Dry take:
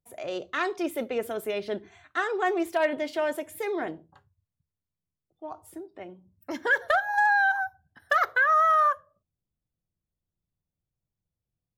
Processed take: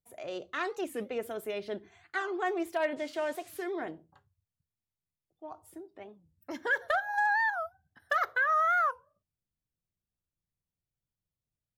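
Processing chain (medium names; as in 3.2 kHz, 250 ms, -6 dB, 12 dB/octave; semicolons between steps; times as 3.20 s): 2.96–3.61 s: band noise 1.1–8.1 kHz -54 dBFS; warped record 45 rpm, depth 250 cents; trim -5.5 dB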